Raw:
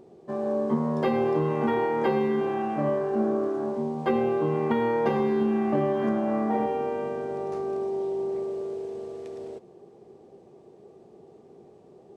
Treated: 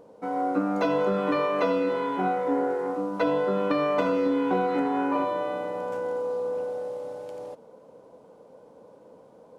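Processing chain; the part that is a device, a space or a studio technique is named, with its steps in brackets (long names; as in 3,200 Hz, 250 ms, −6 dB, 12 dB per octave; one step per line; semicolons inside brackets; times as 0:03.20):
nightcore (speed change +27%)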